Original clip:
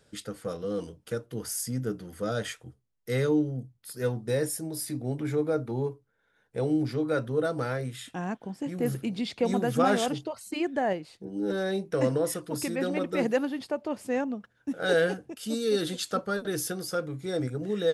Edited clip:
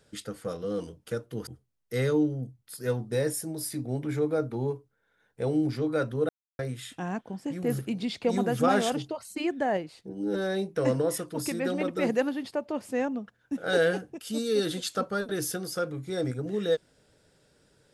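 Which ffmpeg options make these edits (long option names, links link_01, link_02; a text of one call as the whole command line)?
ffmpeg -i in.wav -filter_complex "[0:a]asplit=4[link_01][link_02][link_03][link_04];[link_01]atrim=end=1.472[link_05];[link_02]atrim=start=2.628:end=7.45,asetpts=PTS-STARTPTS,afade=type=out:start_time=4.818:duration=0.004:curve=hsin[link_06];[link_03]atrim=start=7.45:end=7.75,asetpts=PTS-STARTPTS,volume=0[link_07];[link_04]atrim=start=7.75,asetpts=PTS-STARTPTS,afade=type=in:duration=0.004:curve=hsin[link_08];[link_06][link_07][link_08]concat=n=3:v=0:a=1[link_09];[link_05][link_09]acrossfade=duration=0.004:curve1=hsin:curve2=hsin" out.wav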